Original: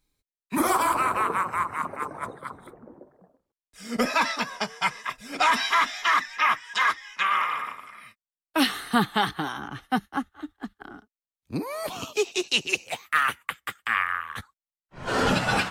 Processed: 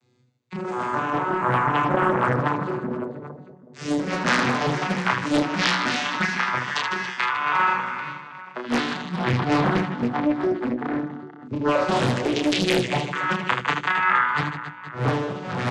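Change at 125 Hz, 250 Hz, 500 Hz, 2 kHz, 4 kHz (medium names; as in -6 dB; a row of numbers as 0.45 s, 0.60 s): +11.5 dB, +7.0 dB, +6.5 dB, +2.5 dB, +0.5 dB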